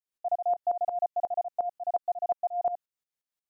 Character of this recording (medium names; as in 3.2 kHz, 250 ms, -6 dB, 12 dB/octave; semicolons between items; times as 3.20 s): tremolo saw up 5.6 Hz, depth 90%